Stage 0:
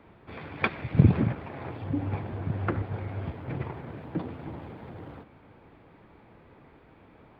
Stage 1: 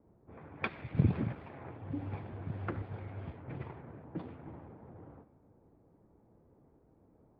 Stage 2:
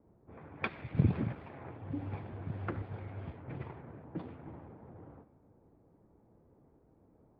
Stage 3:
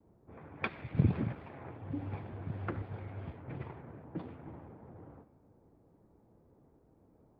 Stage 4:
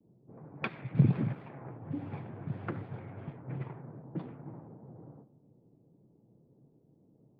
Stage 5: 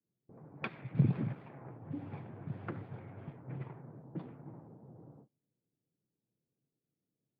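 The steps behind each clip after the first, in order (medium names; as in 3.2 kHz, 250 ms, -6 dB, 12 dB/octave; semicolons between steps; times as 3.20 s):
level-controlled noise filter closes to 520 Hz, open at -26 dBFS; trim -9 dB
no audible change
gate with hold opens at -59 dBFS
level-controlled noise filter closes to 440 Hz, open at -33.5 dBFS; resonant low shelf 100 Hz -9 dB, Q 3
gate -55 dBFS, range -21 dB; trim -4 dB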